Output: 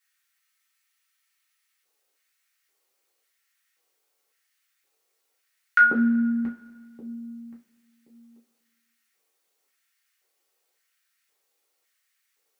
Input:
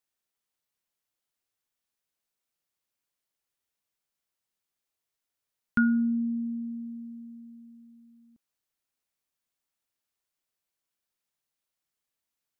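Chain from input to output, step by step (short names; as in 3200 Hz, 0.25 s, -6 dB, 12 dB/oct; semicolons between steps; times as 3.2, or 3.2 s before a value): LFO high-pass square 0.93 Hz 430–1700 Hz; two-slope reverb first 0.25 s, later 1.6 s, from -18 dB, DRR -4.5 dB; spectral freeze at 0.41, 1.44 s; gain +5.5 dB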